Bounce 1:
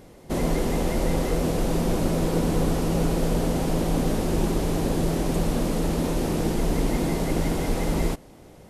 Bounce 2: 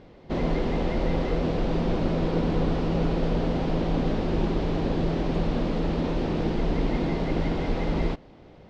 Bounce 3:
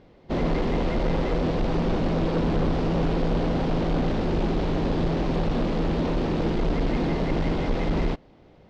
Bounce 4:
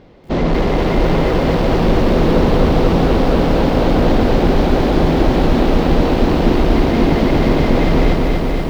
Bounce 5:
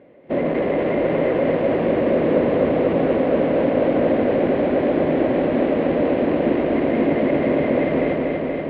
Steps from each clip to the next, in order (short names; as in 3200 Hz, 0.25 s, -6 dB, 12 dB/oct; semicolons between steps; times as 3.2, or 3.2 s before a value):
LPF 4300 Hz 24 dB/oct; gain -1.5 dB
soft clip -24 dBFS, distortion -12 dB; upward expander 1.5:1, over -45 dBFS; gain +6 dB
lo-fi delay 0.239 s, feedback 80%, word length 9-bit, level -3.5 dB; gain +8.5 dB
speaker cabinet 170–2600 Hz, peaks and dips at 180 Hz -4 dB, 280 Hz +3 dB, 570 Hz +9 dB, 860 Hz -6 dB, 1300 Hz -6 dB, 2000 Hz +3 dB; gain -5 dB